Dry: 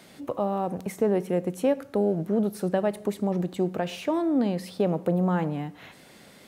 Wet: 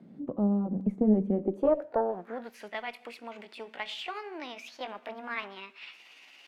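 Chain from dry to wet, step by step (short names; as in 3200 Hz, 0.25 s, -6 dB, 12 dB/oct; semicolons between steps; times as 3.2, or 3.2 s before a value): gliding pitch shift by +5.5 st starting unshifted; band-pass sweep 210 Hz -> 2500 Hz, 1.3–2.56; added harmonics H 2 -16 dB, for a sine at -20.5 dBFS; gain +6.5 dB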